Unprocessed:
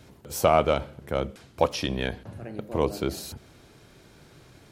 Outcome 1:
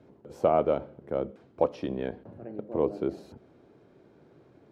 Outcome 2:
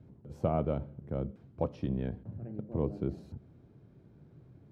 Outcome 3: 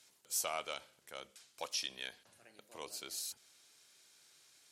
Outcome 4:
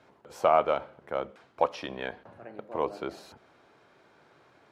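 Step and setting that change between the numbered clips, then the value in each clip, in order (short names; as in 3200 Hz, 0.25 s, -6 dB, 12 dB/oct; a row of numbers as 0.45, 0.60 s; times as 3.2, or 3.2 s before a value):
band-pass, frequency: 380, 140, 8000, 980 Hz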